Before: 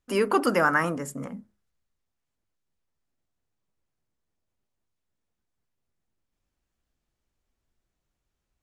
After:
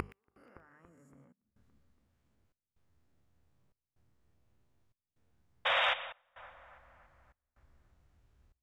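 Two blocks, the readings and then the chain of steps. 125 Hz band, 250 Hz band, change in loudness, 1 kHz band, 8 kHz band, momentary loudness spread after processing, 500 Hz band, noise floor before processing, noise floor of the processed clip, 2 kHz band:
under -15 dB, under -20 dB, -8.0 dB, -9.5 dB, under -20 dB, 18 LU, -16.5 dB, -83 dBFS, under -85 dBFS, -6.5 dB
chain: spectral swells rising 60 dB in 1.70 s; compressor 10:1, threshold -29 dBFS, peak gain reduction 15.5 dB; flipped gate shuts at -28 dBFS, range -34 dB; notches 50/100/150/200 Hz; painted sound noise, 5.65–5.94, 500–3800 Hz -31 dBFS; high shelf 3900 Hz -10 dB; split-band echo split 1800 Hz, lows 0.283 s, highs 0.12 s, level -14.5 dB; soft clip -20 dBFS, distortion -27 dB; bell 73 Hz +11.5 dB 2.1 oct; step gate "x..xxxxxxx" 125 bpm -24 dB; gain +4.5 dB

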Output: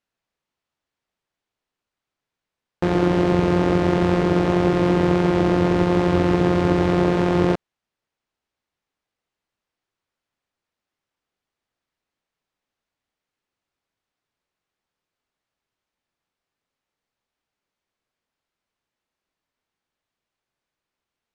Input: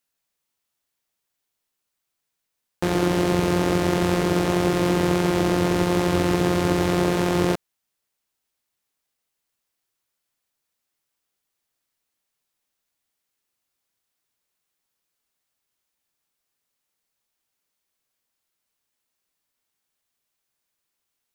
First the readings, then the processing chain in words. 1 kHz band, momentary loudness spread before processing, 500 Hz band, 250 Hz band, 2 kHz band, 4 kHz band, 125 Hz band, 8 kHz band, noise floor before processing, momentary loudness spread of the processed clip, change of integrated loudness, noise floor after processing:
+1.5 dB, 2 LU, +2.5 dB, +3.0 dB, 0.0 dB, -3.5 dB, +3.0 dB, under -10 dB, -81 dBFS, 2 LU, +2.5 dB, under -85 dBFS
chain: tape spacing loss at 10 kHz 20 dB; gain +3.5 dB

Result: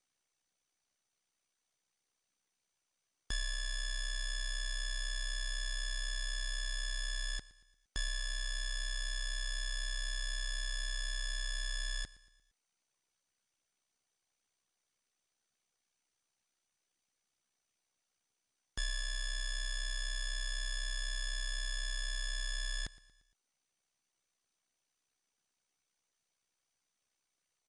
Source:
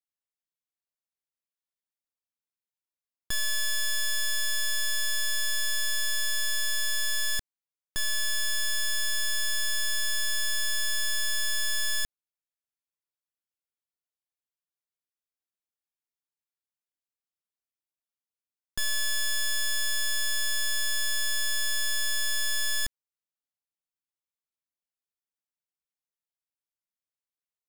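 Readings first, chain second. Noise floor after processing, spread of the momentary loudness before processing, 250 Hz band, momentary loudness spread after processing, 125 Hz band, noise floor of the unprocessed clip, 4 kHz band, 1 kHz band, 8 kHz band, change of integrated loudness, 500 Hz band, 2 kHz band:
under -85 dBFS, 2 LU, n/a, 1 LU, +2.5 dB, under -85 dBFS, -10.5 dB, -10.0 dB, -14.0 dB, -11.5 dB, -10.5 dB, -10.0 dB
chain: power-law curve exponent 0.7; LPF 7200 Hz 12 dB/oct; ring modulator 32 Hz; reverb removal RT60 0.73 s; feedback echo 0.116 s, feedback 48%, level -19 dB; gain -4.5 dB; MP2 128 kbps 24000 Hz

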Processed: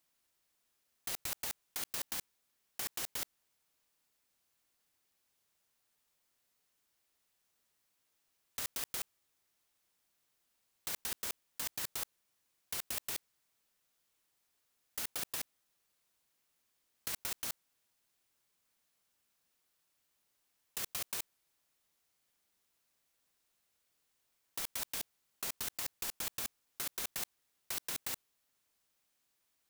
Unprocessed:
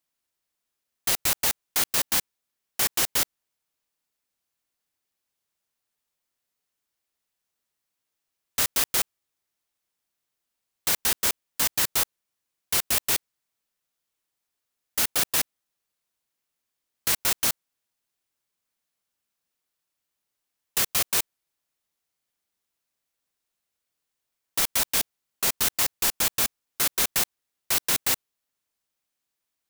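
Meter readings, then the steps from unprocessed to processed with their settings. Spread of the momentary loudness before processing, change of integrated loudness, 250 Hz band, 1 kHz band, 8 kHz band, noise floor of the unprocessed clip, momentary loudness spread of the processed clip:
8 LU, -15.5 dB, -15.5 dB, -15.5 dB, -15.5 dB, -83 dBFS, 7 LU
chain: negative-ratio compressor -32 dBFS, ratio -1; gain -6 dB

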